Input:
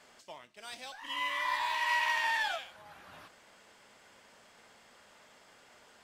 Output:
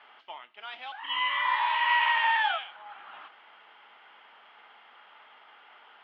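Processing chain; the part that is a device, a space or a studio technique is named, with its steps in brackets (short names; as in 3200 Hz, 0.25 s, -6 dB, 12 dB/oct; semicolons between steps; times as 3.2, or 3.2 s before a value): air absorption 84 m; phone earpiece (speaker cabinet 440–3200 Hz, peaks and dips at 550 Hz -7 dB, 840 Hz +8 dB, 1300 Hz +8 dB, 2100 Hz +3 dB, 3100 Hz +10 dB); gain +2.5 dB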